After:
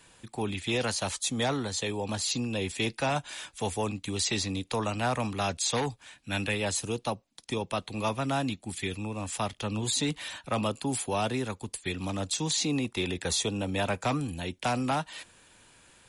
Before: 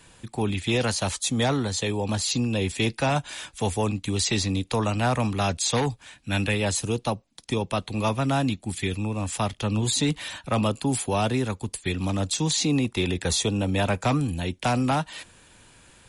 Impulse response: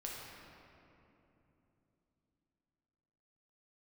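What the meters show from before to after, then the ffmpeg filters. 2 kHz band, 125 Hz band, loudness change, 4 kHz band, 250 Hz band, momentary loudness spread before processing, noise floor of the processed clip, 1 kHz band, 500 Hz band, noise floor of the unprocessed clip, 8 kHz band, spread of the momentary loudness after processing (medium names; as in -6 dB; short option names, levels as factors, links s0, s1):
-3.5 dB, -8.5 dB, -5.0 dB, -3.5 dB, -6.5 dB, 6 LU, -63 dBFS, -4.0 dB, -4.5 dB, -58 dBFS, -3.5 dB, 7 LU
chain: -af "lowshelf=f=210:g=-6.5,volume=0.668"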